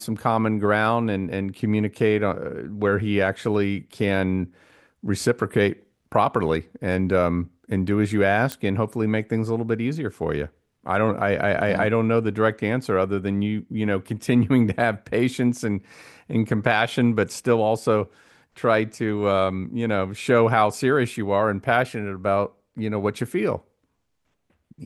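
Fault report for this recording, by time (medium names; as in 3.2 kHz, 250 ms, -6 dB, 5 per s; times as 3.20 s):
8.52 s: pop -10 dBFS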